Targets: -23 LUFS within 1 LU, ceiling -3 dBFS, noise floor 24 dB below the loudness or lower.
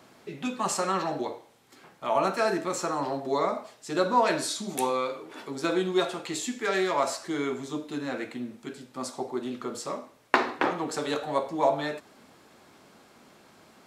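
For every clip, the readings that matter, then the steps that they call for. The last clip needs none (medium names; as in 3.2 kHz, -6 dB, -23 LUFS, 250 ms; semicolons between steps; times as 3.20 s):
loudness -29.0 LUFS; peak level -4.5 dBFS; loudness target -23.0 LUFS
-> trim +6 dB; peak limiter -3 dBFS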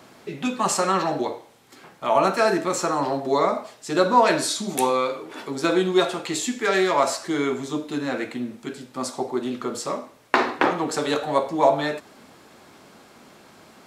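loudness -23.5 LUFS; peak level -3.0 dBFS; noise floor -51 dBFS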